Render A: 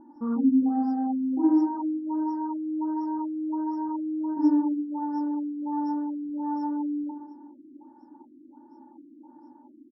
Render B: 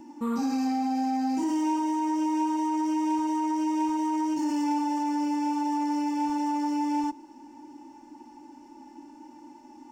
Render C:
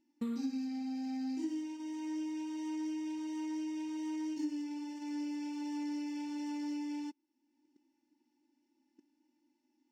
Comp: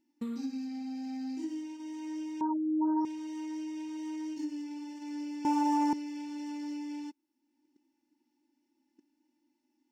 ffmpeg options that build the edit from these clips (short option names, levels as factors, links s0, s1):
-filter_complex "[2:a]asplit=3[s0][s1][s2];[s0]atrim=end=2.412[s3];[0:a]atrim=start=2.408:end=3.052[s4];[s1]atrim=start=3.048:end=5.452[s5];[1:a]atrim=start=5.448:end=5.932[s6];[s2]atrim=start=5.928[s7];[s3][s4]acrossfade=d=0.004:c1=hsin:c2=hsin[s8];[s8][s5]acrossfade=d=0.004:c1=hsin:c2=hsin[s9];[s9][s6]acrossfade=d=0.004:c1=hsin:c2=hsin[s10];[s10][s7]acrossfade=d=0.004:c1=hsin:c2=hsin"